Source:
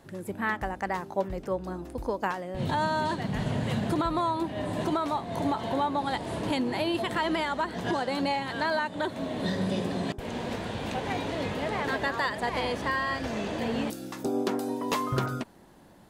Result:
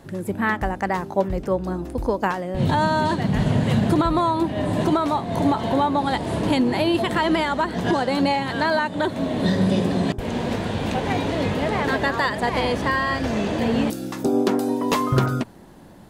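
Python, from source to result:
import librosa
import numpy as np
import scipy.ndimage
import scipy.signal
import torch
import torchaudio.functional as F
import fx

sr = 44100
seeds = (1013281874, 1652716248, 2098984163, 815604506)

y = fx.low_shelf(x, sr, hz=330.0, db=5.5)
y = fx.hum_notches(y, sr, base_hz=60, count=2)
y = F.gain(torch.from_numpy(y), 6.0).numpy()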